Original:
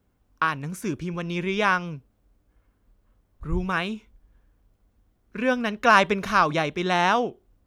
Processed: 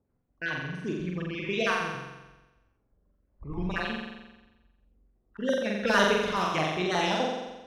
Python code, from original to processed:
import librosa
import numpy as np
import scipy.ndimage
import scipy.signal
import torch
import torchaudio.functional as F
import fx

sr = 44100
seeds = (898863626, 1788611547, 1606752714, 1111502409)

p1 = fx.spec_dropout(x, sr, seeds[0], share_pct=36)
p2 = fx.env_lowpass(p1, sr, base_hz=1200.0, full_db=-18.0)
p3 = fx.low_shelf(p2, sr, hz=410.0, db=-6.0)
p4 = np.clip(p3, -10.0 ** (-16.5 / 20.0), 10.0 ** (-16.5 / 20.0))
p5 = p3 + (p4 * 10.0 ** (-5.5 / 20.0))
p6 = fx.filter_lfo_notch(p5, sr, shape='saw_down', hz=8.2, low_hz=710.0, high_hz=1900.0, q=0.8)
p7 = fx.wow_flutter(p6, sr, seeds[1], rate_hz=2.1, depth_cents=81.0)
p8 = p7 + fx.room_flutter(p7, sr, wall_m=7.6, rt60_s=1.1, dry=0)
y = p8 * 10.0 ** (-4.5 / 20.0)